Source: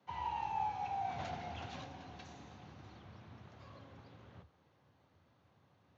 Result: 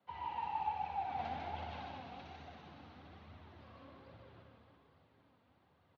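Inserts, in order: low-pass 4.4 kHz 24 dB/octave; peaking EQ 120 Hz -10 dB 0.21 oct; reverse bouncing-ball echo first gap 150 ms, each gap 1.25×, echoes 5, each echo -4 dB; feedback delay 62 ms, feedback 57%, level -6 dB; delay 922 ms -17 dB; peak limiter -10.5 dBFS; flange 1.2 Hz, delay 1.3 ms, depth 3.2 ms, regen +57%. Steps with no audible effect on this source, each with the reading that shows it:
peak limiter -10.5 dBFS: peak at its input -23.0 dBFS

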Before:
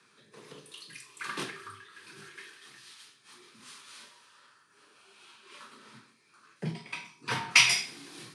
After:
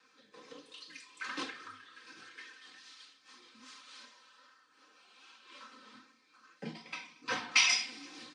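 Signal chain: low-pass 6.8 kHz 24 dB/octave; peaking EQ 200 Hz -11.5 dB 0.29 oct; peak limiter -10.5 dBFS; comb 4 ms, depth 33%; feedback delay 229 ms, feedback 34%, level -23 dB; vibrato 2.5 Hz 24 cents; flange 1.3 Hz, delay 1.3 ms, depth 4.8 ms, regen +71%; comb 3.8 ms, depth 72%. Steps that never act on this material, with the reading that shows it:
none, every step acts

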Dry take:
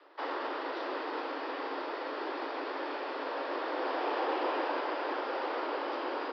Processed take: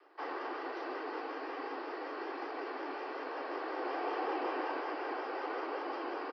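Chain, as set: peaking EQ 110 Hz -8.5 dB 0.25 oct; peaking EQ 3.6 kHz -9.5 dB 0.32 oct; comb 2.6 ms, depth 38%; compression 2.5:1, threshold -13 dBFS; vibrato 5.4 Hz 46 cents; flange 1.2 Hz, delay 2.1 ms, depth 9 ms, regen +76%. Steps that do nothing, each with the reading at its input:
peaking EQ 110 Hz: input has nothing below 230 Hz; compression, threshold -13 dBFS: peak at its input -20.5 dBFS

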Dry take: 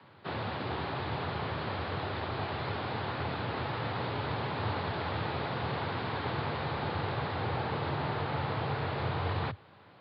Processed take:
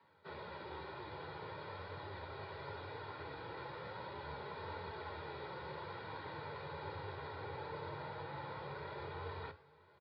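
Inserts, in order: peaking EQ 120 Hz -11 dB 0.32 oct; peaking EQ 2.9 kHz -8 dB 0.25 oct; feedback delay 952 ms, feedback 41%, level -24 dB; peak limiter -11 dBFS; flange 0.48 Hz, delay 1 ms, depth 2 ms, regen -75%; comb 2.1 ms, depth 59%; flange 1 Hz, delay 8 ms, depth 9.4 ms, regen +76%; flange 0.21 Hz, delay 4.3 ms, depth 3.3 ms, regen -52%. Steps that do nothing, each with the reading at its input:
peak limiter -11 dBFS: peak at its input -20.5 dBFS

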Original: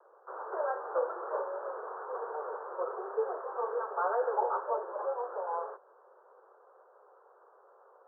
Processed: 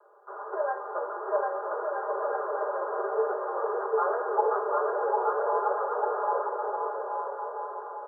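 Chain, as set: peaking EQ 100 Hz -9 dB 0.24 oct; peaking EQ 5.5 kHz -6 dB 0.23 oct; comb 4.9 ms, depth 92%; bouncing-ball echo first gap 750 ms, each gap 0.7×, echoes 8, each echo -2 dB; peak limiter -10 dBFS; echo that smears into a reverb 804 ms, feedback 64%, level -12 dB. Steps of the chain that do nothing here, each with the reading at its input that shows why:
peaking EQ 100 Hz: input has nothing below 340 Hz; peaking EQ 5.5 kHz: input has nothing above 1.7 kHz; peak limiter -10 dBFS: peak at its input -11.5 dBFS

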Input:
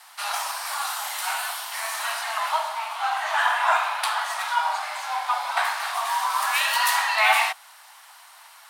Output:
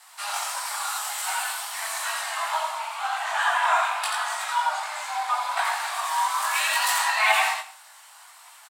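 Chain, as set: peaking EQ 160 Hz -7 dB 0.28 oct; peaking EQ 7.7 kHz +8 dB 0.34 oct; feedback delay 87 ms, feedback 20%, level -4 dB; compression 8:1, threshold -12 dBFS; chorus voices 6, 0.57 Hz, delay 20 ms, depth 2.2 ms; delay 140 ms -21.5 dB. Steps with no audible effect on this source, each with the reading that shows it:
peaking EQ 160 Hz: input has nothing below 540 Hz

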